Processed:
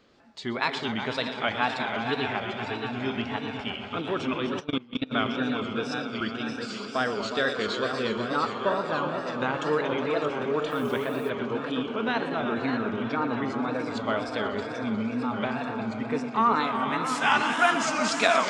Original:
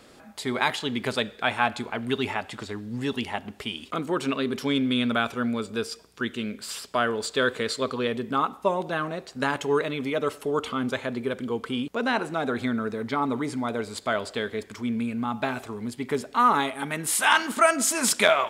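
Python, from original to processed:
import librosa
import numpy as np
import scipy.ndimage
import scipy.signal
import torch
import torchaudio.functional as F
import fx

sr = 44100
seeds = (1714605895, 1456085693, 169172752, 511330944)

p1 = fx.reverse_delay_fb(x, sr, ms=621, feedback_pct=66, wet_db=-8)
p2 = scipy.signal.sosfilt(scipy.signal.butter(4, 6000.0, 'lowpass', fs=sr, output='sos'), p1)
p3 = p2 + fx.echo_heads(p2, sr, ms=122, heads='all three', feedback_pct=64, wet_db=-12.5, dry=0)
p4 = fx.level_steps(p3, sr, step_db=22, at=(4.59, 5.11), fade=0.02)
p5 = fx.dmg_noise_colour(p4, sr, seeds[0], colour='white', level_db=-51.0, at=(10.7, 11.29), fade=0.02)
p6 = fx.wow_flutter(p5, sr, seeds[1], rate_hz=2.1, depth_cents=120.0)
p7 = fx.noise_reduce_blind(p6, sr, reduce_db=6)
y = p7 * librosa.db_to_amplitude(-3.0)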